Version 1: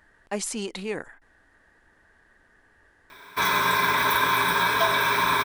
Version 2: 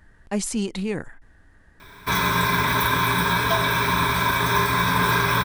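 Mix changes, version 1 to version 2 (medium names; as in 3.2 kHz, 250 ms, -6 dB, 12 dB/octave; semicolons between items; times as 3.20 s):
background: entry -1.30 s; master: add tone controls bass +14 dB, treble +2 dB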